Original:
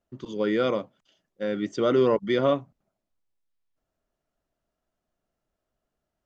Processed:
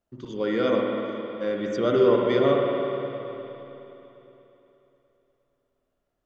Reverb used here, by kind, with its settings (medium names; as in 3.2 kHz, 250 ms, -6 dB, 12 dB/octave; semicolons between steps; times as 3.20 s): spring tank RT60 3.4 s, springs 51/59 ms, chirp 60 ms, DRR -1 dB; trim -1.5 dB